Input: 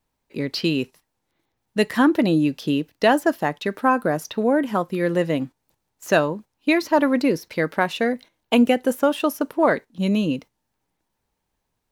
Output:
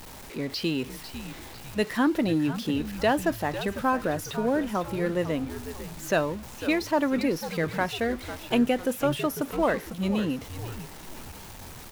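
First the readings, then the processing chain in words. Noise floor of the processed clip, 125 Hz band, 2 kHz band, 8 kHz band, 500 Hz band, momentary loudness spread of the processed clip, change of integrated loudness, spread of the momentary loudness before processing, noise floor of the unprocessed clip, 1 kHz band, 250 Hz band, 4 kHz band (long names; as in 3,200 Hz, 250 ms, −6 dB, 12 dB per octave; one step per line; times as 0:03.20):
−43 dBFS, −3.5 dB, −6.0 dB, −0.5 dB, −6.0 dB, 15 LU, −6.0 dB, 9 LU, −77 dBFS, −6.0 dB, −6.0 dB, −4.5 dB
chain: converter with a step at zero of −30.5 dBFS
echo with shifted repeats 499 ms, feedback 45%, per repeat −99 Hz, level −11.5 dB
level −7 dB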